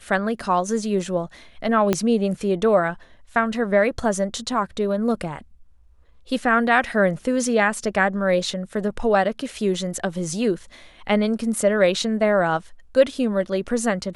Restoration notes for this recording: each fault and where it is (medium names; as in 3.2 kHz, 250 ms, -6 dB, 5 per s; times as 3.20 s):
1.93 s: pop -6 dBFS